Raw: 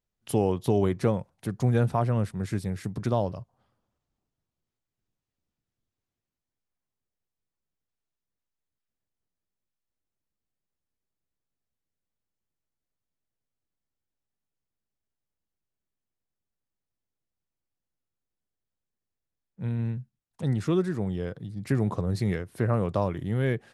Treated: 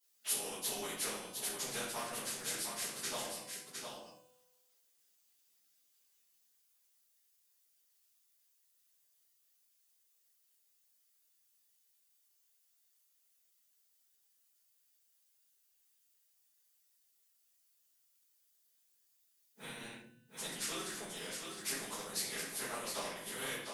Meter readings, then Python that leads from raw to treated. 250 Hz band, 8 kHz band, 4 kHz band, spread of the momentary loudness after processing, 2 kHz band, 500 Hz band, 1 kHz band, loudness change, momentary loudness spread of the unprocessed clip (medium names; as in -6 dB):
-21.5 dB, +11.5 dB, +7.0 dB, 10 LU, -2.5 dB, -17.0 dB, -10.5 dB, -11.0 dB, 9 LU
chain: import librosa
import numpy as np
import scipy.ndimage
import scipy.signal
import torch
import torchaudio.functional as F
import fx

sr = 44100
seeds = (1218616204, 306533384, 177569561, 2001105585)

y = fx.phase_scramble(x, sr, seeds[0], window_ms=50)
y = scipy.signal.sosfilt(scipy.signal.butter(4, 160.0, 'highpass', fs=sr, output='sos'), y)
y = np.diff(y, prepend=0.0)
y = fx.hum_notches(y, sr, base_hz=50, count=5)
y = fx.transient(y, sr, attack_db=5, sustain_db=-7)
y = fx.comb_fb(y, sr, f0_hz=250.0, decay_s=1.3, harmonics='all', damping=0.0, mix_pct=50)
y = y + 10.0 ** (-11.0 / 20.0) * np.pad(y, (int(710 * sr / 1000.0), 0))[:len(y)]
y = fx.room_shoebox(y, sr, seeds[1], volume_m3=39.0, walls='mixed', distance_m=1.5)
y = fx.spectral_comp(y, sr, ratio=2.0)
y = y * librosa.db_to_amplitude(-1.0)